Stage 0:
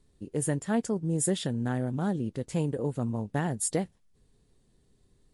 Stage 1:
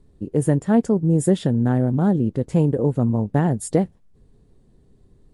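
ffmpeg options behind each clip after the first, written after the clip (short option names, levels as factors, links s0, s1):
-af "tiltshelf=f=1400:g=7,volume=1.68"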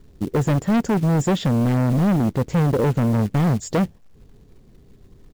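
-af "aresample=16000,asoftclip=type=hard:threshold=0.0891,aresample=44100,acrusher=bits=5:mode=log:mix=0:aa=0.000001,volume=1.88"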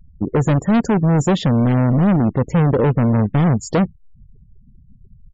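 -af "afftfilt=real='re*gte(hypot(re,im),0.0158)':imag='im*gte(hypot(re,im),0.0158)':win_size=1024:overlap=0.75,aresample=16000,aresample=44100,volume=1.5"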